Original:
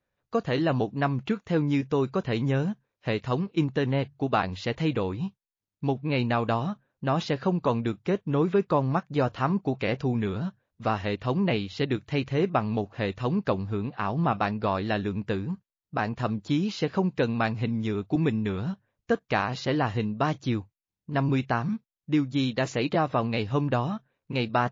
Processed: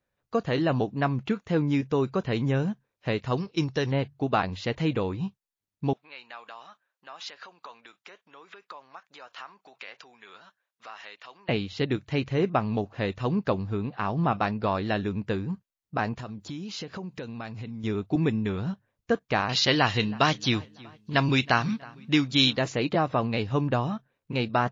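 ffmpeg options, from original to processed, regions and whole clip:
ffmpeg -i in.wav -filter_complex "[0:a]asettb=1/sr,asplit=3[link_01][link_02][link_03];[link_01]atrim=end=3.374[link_04];[link_02]atrim=start=3.37:end=3.92,asetpts=PTS-STARTPTS,afade=type=in:duration=0.004:curve=qsin,afade=type=out:start_time=0.546:duration=0.004:curve=qsin,lowpass=frequency=5400:width_type=q:width=7,equalizer=frequency=230:width=2.3:gain=-7.5[link_05];[link_03]atrim=start=3.916[link_06];[link_04][link_05]acrossfade=duration=0.004:curve1=hsin:curve2=qsin[link_07];[link_07][link_06]acrossfade=duration=0.004:curve1=qsin:curve2=hsin,asettb=1/sr,asplit=3[link_08][link_09][link_10];[link_08]atrim=end=5.934[link_11];[link_09]atrim=start=5.93:end=11.49,asetpts=PTS-STARTPTS,afade=type=in:duration=0.004:curve=qsin,afade=type=out:start_time=5.556:duration=0.004:curve=qsin,acompressor=threshold=-30dB:ratio=12:attack=3.2:release=140:knee=1:detection=peak,highpass=1100[link_12];[link_10]atrim=start=11.486[link_13];[link_11][link_12]acrossfade=duration=0.004:curve1=hsin:curve2=qsin[link_14];[link_14][link_13]acrossfade=duration=0.004:curve1=qsin:curve2=hsin,asettb=1/sr,asplit=3[link_15][link_16][link_17];[link_15]atrim=end=16.174[link_18];[link_16]atrim=start=16.17:end=17.84,asetpts=PTS-STARTPTS,afade=type=in:duration=0.004:curve=qsin,afade=type=out:start_time=1.666:duration=0.004:curve=qsin,acompressor=threshold=-35dB:ratio=4:attack=3.2:release=140:knee=1:detection=peak,highshelf=frequency=5000:gain=7[link_19];[link_17]atrim=start=17.836[link_20];[link_18][link_19]acrossfade=duration=0.004:curve1=hsin:curve2=qsin[link_21];[link_21][link_20]acrossfade=duration=0.004:curve1=qsin:curve2=hsin,asettb=1/sr,asplit=3[link_22][link_23][link_24];[link_22]atrim=end=19.494[link_25];[link_23]atrim=start=19.49:end=22.57,asetpts=PTS-STARTPTS,afade=type=in:duration=0.004:curve=qsin,afade=type=out:start_time=3.076:duration=0.004:curve=qsin,equalizer=frequency=4100:width=0.46:gain=15,asplit=2[link_26][link_27];[link_27]adelay=320,lowpass=frequency=3700:poles=1,volume=-22dB,asplit=2[link_28][link_29];[link_29]adelay=320,lowpass=frequency=3700:poles=1,volume=0.5,asplit=2[link_30][link_31];[link_31]adelay=320,lowpass=frequency=3700:poles=1,volume=0.5[link_32];[link_26][link_28][link_30][link_32]amix=inputs=4:normalize=0,atrim=end_sample=135828[link_33];[link_24]atrim=start=22.566[link_34];[link_25][link_33]acrossfade=duration=0.004:curve1=hsin:curve2=qsin[link_35];[link_35][link_34]acrossfade=duration=0.004:curve1=qsin:curve2=hsin" out.wav

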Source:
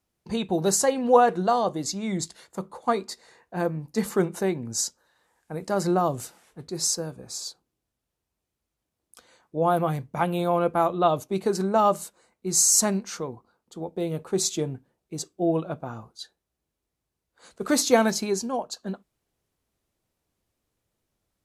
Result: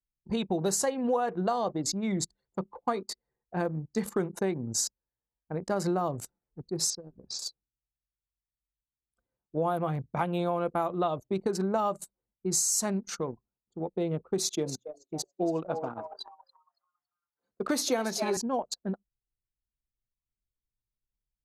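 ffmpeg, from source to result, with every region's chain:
ffmpeg -i in.wav -filter_complex "[0:a]asettb=1/sr,asplit=3[link_01][link_02][link_03];[link_01]atrim=end=6.904[link_04];[link_02]atrim=start=6.9:end=7.39,asetpts=PTS-STARTPTS,afade=type=in:duration=0.004:curve=qsin,afade=type=out:start_time=0.486:duration=0.004:curve=qsin,lowpass=frequency=5100:width=0.5412,lowpass=frequency=5100:width=1.3066,acompressor=threshold=-38dB:ratio=5:attack=3.2:release=140:knee=1:detection=peak,highshelf=frequency=3300:gain=10.5[link_05];[link_03]atrim=start=7.386[link_06];[link_04][link_05]acrossfade=duration=0.004:curve1=hsin:curve2=qsin[link_07];[link_07][link_06]acrossfade=duration=0.004:curve1=qsin:curve2=hsin,asettb=1/sr,asplit=3[link_08][link_09][link_10];[link_08]atrim=end=14.384[link_11];[link_09]atrim=start=14.38:end=18.37,asetpts=PTS-STARTPTS,afade=type=in:duration=0.004:curve=qsin,afade=type=out:start_time=3.986:duration=0.004:curve=qsin,highpass=180,equalizer=frequency=7600:width=5.8:gain=-7,asplit=7[link_12][link_13][link_14][link_15][link_16][link_17][link_18];[link_13]adelay=279,afreqshift=150,volume=-11.5dB[link_19];[link_14]adelay=558,afreqshift=300,volume=-16.7dB[link_20];[link_15]adelay=837,afreqshift=450,volume=-21.9dB[link_21];[link_16]adelay=1116,afreqshift=600,volume=-27.1dB[link_22];[link_17]adelay=1395,afreqshift=750,volume=-32.3dB[link_23];[link_18]adelay=1674,afreqshift=900,volume=-37.5dB[link_24];[link_12][link_19][link_20][link_21][link_22][link_23][link_24]amix=inputs=7:normalize=0,atrim=end_sample=175959[link_25];[link_10]atrim=start=18.366[link_26];[link_11][link_25]acrossfade=duration=0.004:curve1=hsin:curve2=qsin[link_27];[link_27][link_26]acrossfade=duration=0.004:curve1=qsin:curve2=hsin,anlmdn=3.98,acompressor=threshold=-25dB:ratio=6" out.wav

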